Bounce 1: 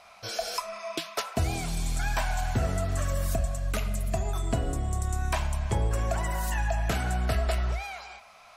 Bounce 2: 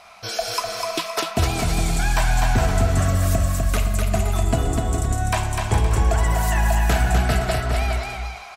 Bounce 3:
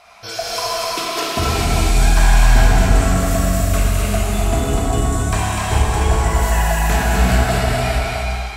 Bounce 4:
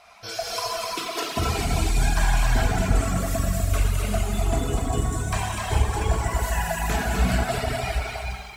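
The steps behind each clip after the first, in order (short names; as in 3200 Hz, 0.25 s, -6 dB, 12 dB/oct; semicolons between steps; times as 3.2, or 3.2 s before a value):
notch 560 Hz, Q 12; on a send: bouncing-ball echo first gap 0.25 s, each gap 0.65×, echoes 5; on the sum: gain +6.5 dB
non-linear reverb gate 0.47 s flat, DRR -6 dB; gain -2 dB
reverb removal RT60 1.7 s; lo-fi delay 86 ms, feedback 80%, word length 7-bit, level -13.5 dB; gain -4.5 dB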